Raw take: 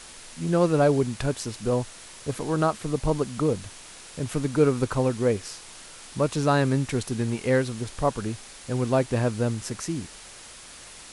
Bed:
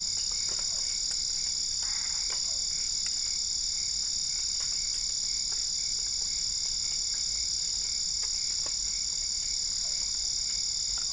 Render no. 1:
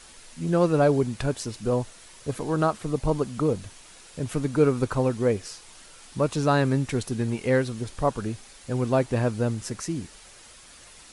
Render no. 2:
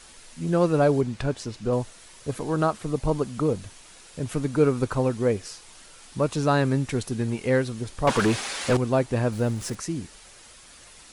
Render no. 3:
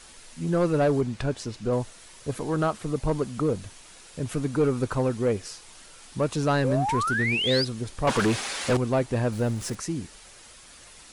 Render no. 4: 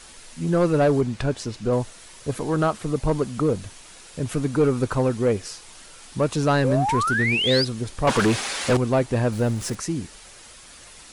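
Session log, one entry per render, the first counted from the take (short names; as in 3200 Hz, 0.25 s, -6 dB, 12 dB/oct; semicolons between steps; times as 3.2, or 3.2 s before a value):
denoiser 6 dB, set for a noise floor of -45 dBFS
1.01–1.73 air absorption 55 m; 8.07–8.77 overdrive pedal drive 29 dB, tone 3100 Hz, clips at -11 dBFS; 9.32–9.75 zero-crossing step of -37.5 dBFS
6.64–7.65 painted sound rise 480–5100 Hz -26 dBFS; soft clip -15 dBFS, distortion -17 dB
gain +3.5 dB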